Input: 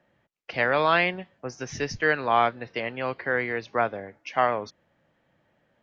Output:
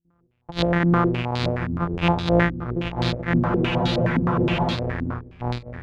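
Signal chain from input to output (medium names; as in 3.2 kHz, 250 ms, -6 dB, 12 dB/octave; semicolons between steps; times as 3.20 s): sorted samples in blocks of 256 samples; gate with hold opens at -59 dBFS; bass shelf 220 Hz +8 dB; feedback comb 84 Hz, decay 0.15 s, harmonics all, mix 50%; on a send at -21 dB: reverberation RT60 0.65 s, pre-delay 98 ms; on the sum: ever faster or slower copies 107 ms, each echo -6 st, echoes 3, each echo -6 dB; spectral freeze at 3.41 s, 1.35 s; step-sequenced low-pass 9.6 Hz 270–4000 Hz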